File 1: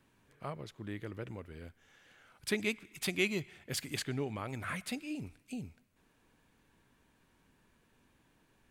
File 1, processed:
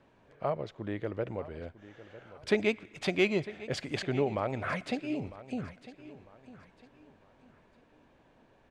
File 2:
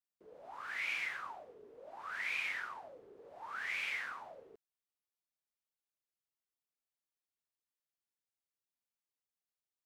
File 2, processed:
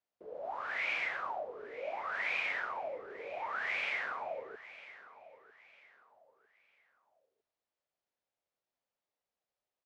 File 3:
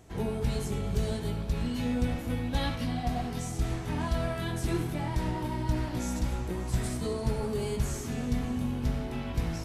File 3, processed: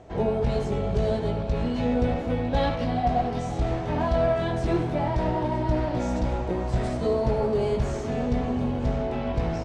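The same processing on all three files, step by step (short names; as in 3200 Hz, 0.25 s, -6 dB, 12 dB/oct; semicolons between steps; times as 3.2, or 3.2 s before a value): air absorption 120 m; feedback echo 0.952 s, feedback 33%, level -16.5 dB; in parallel at -6 dB: one-sided clip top -28.5 dBFS; on the sum: bell 610 Hz +11 dB 1.1 oct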